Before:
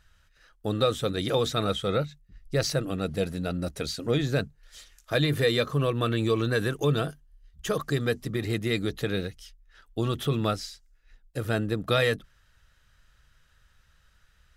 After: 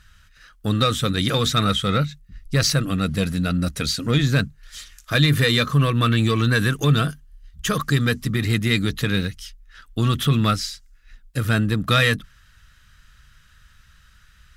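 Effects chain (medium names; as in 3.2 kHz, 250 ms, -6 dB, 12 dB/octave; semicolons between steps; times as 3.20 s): Chebyshev shaper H 5 -25 dB, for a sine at -11 dBFS; high-order bell 540 Hz -9.5 dB; trim +8 dB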